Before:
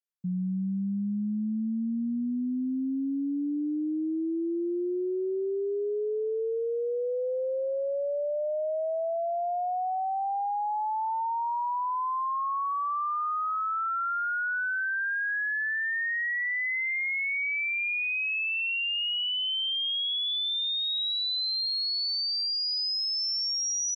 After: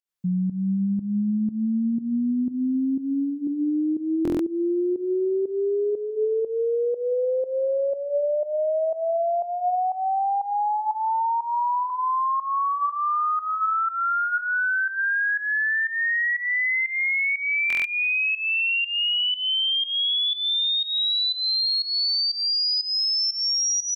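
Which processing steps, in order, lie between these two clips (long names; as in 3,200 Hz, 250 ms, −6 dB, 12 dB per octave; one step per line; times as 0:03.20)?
on a send at −22.5 dB: convolution reverb RT60 2.6 s, pre-delay 110 ms
on the sum: fake sidechain pumping 121 BPM, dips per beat 1, −16 dB, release 208 ms
hum removal 142.1 Hz, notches 11
buffer that repeats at 0:04.23/0:17.68, samples 1,024, times 6
level +6.5 dB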